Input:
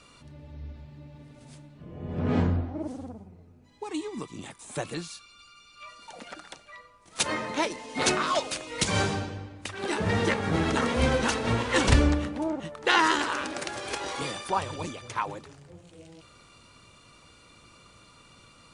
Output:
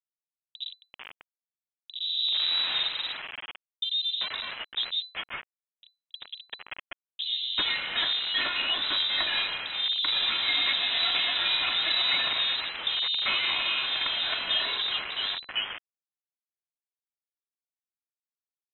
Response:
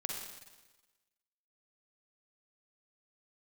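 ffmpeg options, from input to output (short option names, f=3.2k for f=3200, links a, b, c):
-filter_complex "[0:a]aeval=exprs='if(lt(val(0),0),0.708*val(0),val(0))':c=same,equalizer=f=820:t=o:w=0.38:g=4.5,aecho=1:1:2.7:0.79,adynamicsmooth=sensitivity=5:basefreq=3.1k,aresample=16000,asoftclip=type=tanh:threshold=-20dB,aresample=44100,acrossover=split=82|810[a][b][c];[a]acompressor=threshold=-44dB:ratio=4[d];[b]acompressor=threshold=-33dB:ratio=4[e];[c]acompressor=threshold=-32dB:ratio=4[f];[d][e][f]amix=inputs=3:normalize=0,acrusher=bits=5:mix=0:aa=0.000001,acrossover=split=900[g][h];[h]adelay=390[i];[g][i]amix=inputs=2:normalize=0,lowpass=f=3.4k:t=q:w=0.5098,lowpass=f=3.4k:t=q:w=0.6013,lowpass=f=3.4k:t=q:w=0.9,lowpass=f=3.4k:t=q:w=2.563,afreqshift=-4000,volume=6dB"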